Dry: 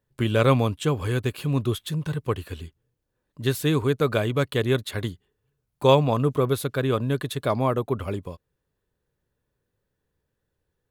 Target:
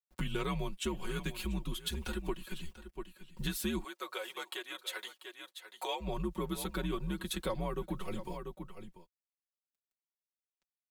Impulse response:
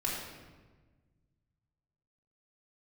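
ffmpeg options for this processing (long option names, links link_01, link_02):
-filter_complex "[0:a]acrusher=bits=10:mix=0:aa=0.000001,flanger=delay=2.5:depth=1.3:regen=-51:speed=1.3:shape=sinusoidal,afreqshift=-87,aecho=1:1:5.4:0.77,aecho=1:1:690:0.126,acompressor=threshold=-37dB:ratio=4,asplit=3[link_01][link_02][link_03];[link_01]afade=type=out:start_time=3.83:duration=0.02[link_04];[link_02]highpass=frequency=490:width=0.5412,highpass=frequency=490:width=1.3066,afade=type=in:start_time=3.83:duration=0.02,afade=type=out:start_time=6:duration=0.02[link_05];[link_03]afade=type=in:start_time=6:duration=0.02[link_06];[link_04][link_05][link_06]amix=inputs=3:normalize=0,adynamicequalizer=threshold=0.00158:dfrequency=2000:dqfactor=0.7:tfrequency=2000:tqfactor=0.7:attack=5:release=100:ratio=0.375:range=2:mode=boostabove:tftype=highshelf,volume=2dB"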